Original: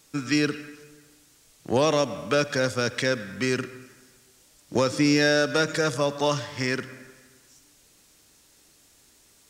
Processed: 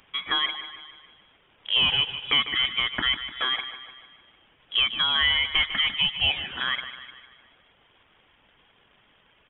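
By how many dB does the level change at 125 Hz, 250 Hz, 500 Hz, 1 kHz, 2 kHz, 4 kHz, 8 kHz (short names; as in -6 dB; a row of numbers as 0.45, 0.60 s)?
-12.5 dB, -18.5 dB, -21.5 dB, -3.0 dB, +2.0 dB, +11.5 dB, under -40 dB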